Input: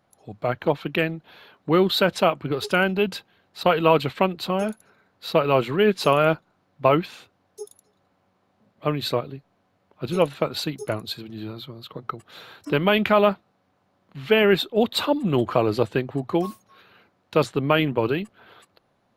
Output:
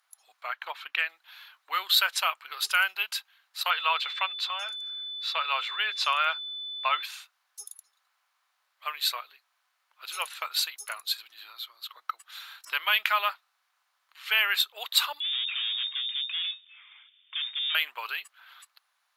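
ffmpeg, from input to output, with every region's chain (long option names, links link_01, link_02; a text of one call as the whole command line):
ffmpeg -i in.wav -filter_complex "[0:a]asettb=1/sr,asplit=3[link_01][link_02][link_03];[link_01]atrim=end=0.424[link_04];[link_02]atrim=start=0.42:end=1.09,asetpts=PTS-STARTPTS,afade=type=in:duration=0.004:curve=qsin,afade=type=out:start_time=0.666:duration=0.004:curve=qsin,acrossover=split=9300[link_05][link_06];[link_06]acompressor=threshold=-59dB:ratio=4:attack=1:release=60[link_07];[link_05][link_07]amix=inputs=2:normalize=0,bass=frequency=250:gain=2,treble=frequency=4000:gain=-7,bandreject=frequency=60:width_type=h:width=6,bandreject=frequency=120:width_type=h:width=6,bandreject=frequency=180:width_type=h:width=6[link_08];[link_03]atrim=start=1.086[link_09];[link_04][link_08]acrossfade=duration=0.004:curve1=hsin:curve2=qsin[link_10];[link_10][link_09]acrossfade=duration=0.004:curve1=qsin:curve2=hsin,asettb=1/sr,asplit=3[link_11][link_12][link_13];[link_11]atrim=end=3.704[link_14];[link_12]atrim=start=3.7:end=7.03,asetpts=PTS-STARTPTS,afade=type=in:duration=0.004:curve=qsin,afade=type=out:start_time=3.326:duration=0.004:curve=qsin,acrossover=split=250 6000:gain=0.158 1 0.1[link_15][link_16][link_17];[link_15][link_16][link_17]amix=inputs=3:normalize=0,aeval=exprs='val(0)+0.0158*sin(2*PI*3500*n/s)':channel_layout=same[link_18];[link_13]atrim=start=7.026[link_19];[link_14][link_18]acrossfade=duration=0.004:curve1=hsin:curve2=qsin[link_20];[link_20][link_19]acrossfade=duration=0.004:curve1=qsin:curve2=hsin,asettb=1/sr,asplit=3[link_21][link_22][link_23];[link_21]atrim=end=15.204[link_24];[link_22]atrim=start=15.2:end=17.75,asetpts=PTS-STARTPTS,afade=type=in:duration=0.004:curve=qsin,afade=type=out:start_time=2.546:duration=0.004:curve=qsin,lowshelf=frequency=280:gain=8.5,aeval=exprs='(tanh(35.5*val(0)+0.3)-tanh(0.3))/35.5':channel_layout=same,lowpass=frequency=3100:width_type=q:width=0.5098,lowpass=frequency=3100:width_type=q:width=0.6013,lowpass=frequency=3100:width_type=q:width=0.9,lowpass=frequency=3100:width_type=q:width=2.563,afreqshift=-3700[link_25];[link_23]atrim=start=17.746[link_26];[link_24][link_25]acrossfade=duration=0.004:curve1=hsin:curve2=qsin[link_27];[link_27][link_26]acrossfade=duration=0.004:curve1=qsin:curve2=hsin,highpass=frequency=1100:width=0.5412,highpass=frequency=1100:width=1.3066,aemphasis=mode=production:type=cd,volume=-1dB" out.wav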